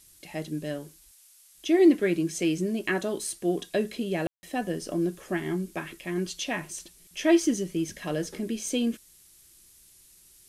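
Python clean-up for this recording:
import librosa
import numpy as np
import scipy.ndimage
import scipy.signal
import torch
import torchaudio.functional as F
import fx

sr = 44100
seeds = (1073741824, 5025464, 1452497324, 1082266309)

y = fx.fix_ambience(x, sr, seeds[0], print_start_s=1.13, print_end_s=1.63, start_s=4.27, end_s=4.43)
y = fx.noise_reduce(y, sr, print_start_s=1.13, print_end_s=1.63, reduce_db=17.0)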